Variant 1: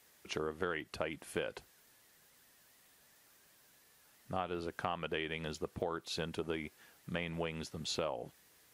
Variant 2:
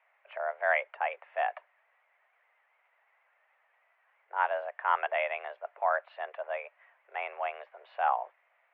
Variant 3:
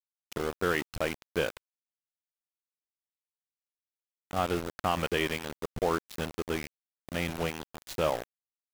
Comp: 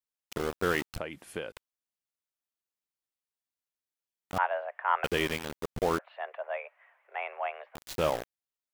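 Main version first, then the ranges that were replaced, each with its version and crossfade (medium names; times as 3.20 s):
3
0.98–1.52 s: from 1
4.38–5.04 s: from 2
5.99–7.75 s: from 2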